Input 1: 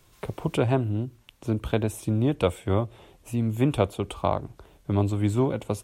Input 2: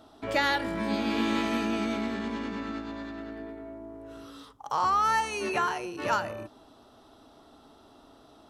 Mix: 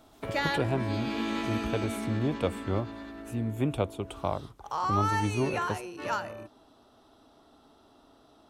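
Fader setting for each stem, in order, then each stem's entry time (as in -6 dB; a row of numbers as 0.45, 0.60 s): -6.0, -4.0 dB; 0.00, 0.00 s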